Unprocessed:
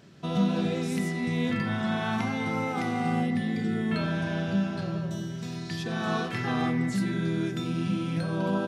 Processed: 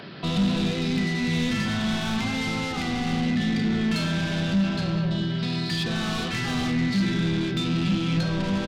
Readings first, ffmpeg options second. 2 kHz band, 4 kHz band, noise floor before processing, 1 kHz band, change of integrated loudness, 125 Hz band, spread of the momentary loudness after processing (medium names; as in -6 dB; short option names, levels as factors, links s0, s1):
+4.0 dB, +10.0 dB, -35 dBFS, -1.0 dB, +3.5 dB, +4.0 dB, 3 LU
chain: -filter_complex "[0:a]aresample=11025,aresample=44100,asplit=2[s0][s1];[s1]highpass=f=720:p=1,volume=22.4,asoftclip=type=tanh:threshold=0.211[s2];[s0][s2]amix=inputs=2:normalize=0,lowpass=f=2200:p=1,volume=0.501,acrossover=split=240|3000[s3][s4][s5];[s4]acompressor=threshold=0.00316:ratio=2[s6];[s3][s6][s5]amix=inputs=3:normalize=0,volume=1.41"